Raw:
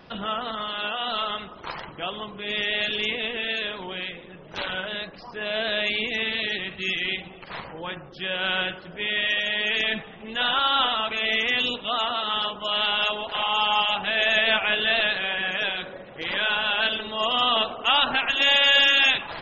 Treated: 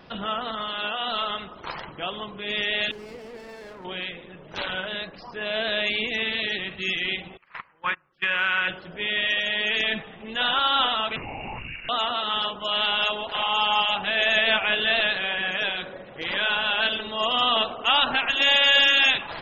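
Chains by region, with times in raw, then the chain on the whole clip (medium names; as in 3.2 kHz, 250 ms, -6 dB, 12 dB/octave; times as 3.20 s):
2.91–3.85 s: valve stage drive 28 dB, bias 0.6 + Gaussian low-pass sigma 4.5 samples + sliding maximum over 9 samples
7.37–8.68 s: gate -33 dBFS, range -28 dB + high-order bell 1.6 kHz +13.5 dB + compression, threshold -19 dBFS
11.16–11.89 s: compression, threshold -29 dBFS + LPC vocoder at 8 kHz whisper + frequency inversion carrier 2.8 kHz
whole clip: none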